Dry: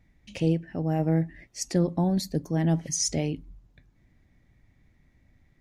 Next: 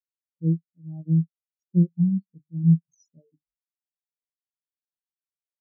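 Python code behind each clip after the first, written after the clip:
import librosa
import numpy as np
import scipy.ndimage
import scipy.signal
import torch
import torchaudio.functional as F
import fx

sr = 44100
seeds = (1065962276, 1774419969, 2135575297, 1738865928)

y = fx.hum_notches(x, sr, base_hz=50, count=6)
y = fx.spectral_expand(y, sr, expansion=4.0)
y = y * librosa.db_to_amplitude(3.0)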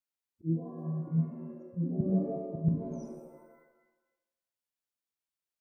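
y = fx.spec_quant(x, sr, step_db=30)
y = fx.auto_swell(y, sr, attack_ms=230.0)
y = fx.rev_shimmer(y, sr, seeds[0], rt60_s=1.0, semitones=7, shimmer_db=-2, drr_db=5.5)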